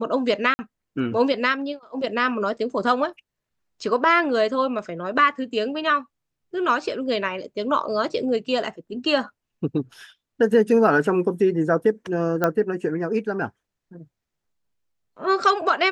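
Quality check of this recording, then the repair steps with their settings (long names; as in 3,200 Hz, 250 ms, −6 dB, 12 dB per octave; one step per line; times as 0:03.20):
0:00.54–0:00.59: drop-out 50 ms
0:12.44: click −8 dBFS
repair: click removal
repair the gap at 0:00.54, 50 ms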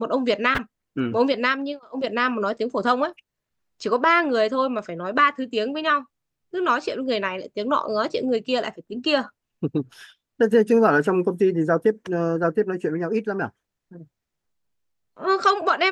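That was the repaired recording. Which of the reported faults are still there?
none of them is left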